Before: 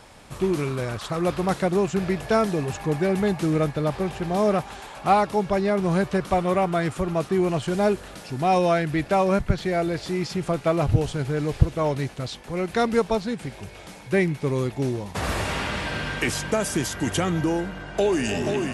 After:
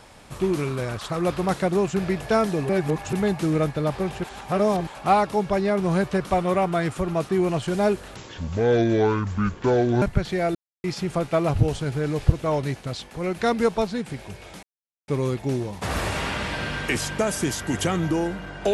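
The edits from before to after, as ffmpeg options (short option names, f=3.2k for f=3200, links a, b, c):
-filter_complex "[0:a]asplit=11[a][b][c][d][e][f][g][h][i][j][k];[a]atrim=end=2.692[l];[b]atrim=start=2.688:end=3.132,asetpts=PTS-STARTPTS,areverse[m];[c]atrim=start=3.128:end=4.242[n];[d]atrim=start=4.238:end=4.872,asetpts=PTS-STARTPTS,areverse[o];[e]atrim=start=4.868:end=8.164[p];[f]atrim=start=8.16:end=9.35,asetpts=PTS-STARTPTS,asetrate=28224,aresample=44100,atrim=end_sample=81998,asetpts=PTS-STARTPTS[q];[g]atrim=start=9.346:end=9.88,asetpts=PTS-STARTPTS,afade=t=out:st=0.53:d=0.004:c=hsin[r];[h]atrim=start=9.88:end=10.17,asetpts=PTS-STARTPTS,volume=0[s];[i]atrim=start=10.17:end=13.96,asetpts=PTS-STARTPTS,afade=t=in:d=0.004:c=hsin,afade=t=out:st=3.786:d=0.004:c=hsin[t];[j]atrim=start=13.96:end=14.41,asetpts=PTS-STARTPTS,volume=0[u];[k]atrim=start=14.41,asetpts=PTS-STARTPTS,afade=t=in:d=0.004:c=hsin[v];[l][m]acrossfade=d=0.004:c1=hsin:c2=hsin[w];[w][n]acrossfade=d=0.004:c1=hsin:c2=hsin[x];[x][o]acrossfade=d=0.004:c1=hsin:c2=hsin[y];[y][p]acrossfade=d=0.004:c1=hsin:c2=hsin[z];[z][q]acrossfade=d=0.004:c1=hsin:c2=hsin[aa];[r][s][t][u][v]concat=n=5:v=0:a=1[ab];[aa][ab]acrossfade=d=0.004:c1=hsin:c2=hsin"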